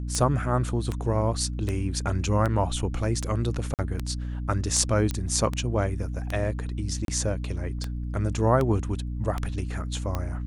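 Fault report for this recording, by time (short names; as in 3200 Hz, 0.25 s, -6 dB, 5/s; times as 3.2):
hum 60 Hz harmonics 5 -31 dBFS
tick 78 rpm -15 dBFS
3.74–3.79 gap 48 ms
5.11 pop -14 dBFS
7.05–7.08 gap 32 ms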